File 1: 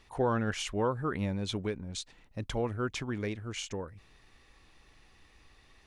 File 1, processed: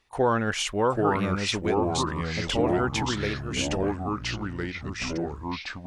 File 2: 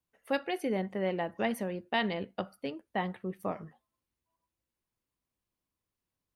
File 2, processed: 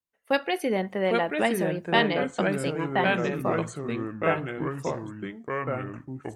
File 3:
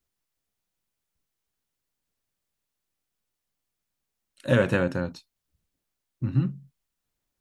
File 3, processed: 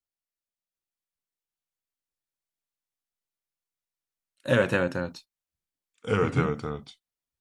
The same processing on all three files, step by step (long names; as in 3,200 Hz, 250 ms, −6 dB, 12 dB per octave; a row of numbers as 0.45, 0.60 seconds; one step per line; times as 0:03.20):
noise gate −47 dBFS, range −14 dB
low-shelf EQ 320 Hz −6.5 dB
delay with pitch and tempo change per echo 746 ms, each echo −3 semitones, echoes 3
loudness normalisation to −27 LKFS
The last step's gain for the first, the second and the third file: +8.0, +8.0, +1.5 decibels